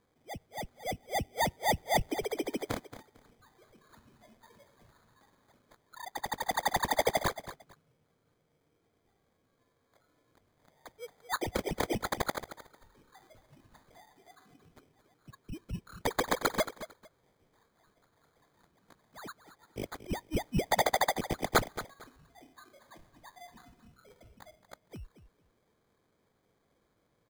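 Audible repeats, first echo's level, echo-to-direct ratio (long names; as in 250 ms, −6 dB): 2, −13.5 dB, −13.5 dB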